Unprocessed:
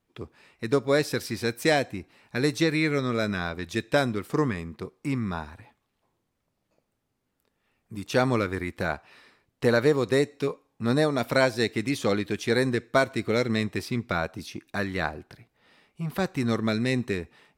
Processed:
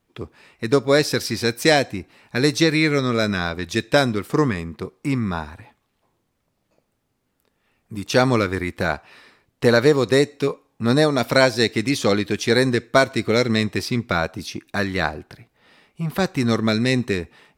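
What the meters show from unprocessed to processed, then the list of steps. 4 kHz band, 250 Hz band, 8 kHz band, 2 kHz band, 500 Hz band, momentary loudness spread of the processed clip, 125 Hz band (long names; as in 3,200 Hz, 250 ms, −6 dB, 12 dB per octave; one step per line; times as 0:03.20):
+9.0 dB, +6.0 dB, +8.5 dB, +6.5 dB, +6.0 dB, 12 LU, +6.0 dB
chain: dynamic equaliser 5,100 Hz, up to +5 dB, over −46 dBFS, Q 1.4
level +6 dB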